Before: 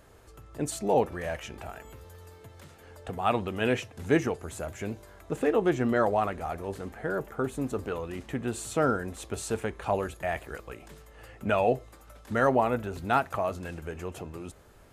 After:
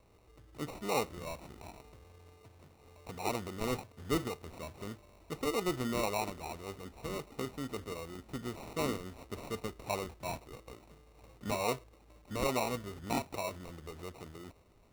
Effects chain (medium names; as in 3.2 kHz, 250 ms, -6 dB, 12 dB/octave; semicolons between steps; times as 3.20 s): sample-and-hold 27×; trim -8.5 dB